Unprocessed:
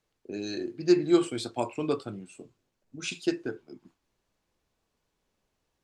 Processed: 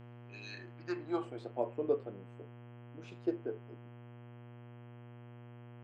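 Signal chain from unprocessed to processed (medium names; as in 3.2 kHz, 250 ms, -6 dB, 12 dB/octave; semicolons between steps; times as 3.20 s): band-pass sweep 2.7 kHz -> 500 Hz, 0.38–1.53 s; mains buzz 120 Hz, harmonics 27, -52 dBFS -7 dB/octave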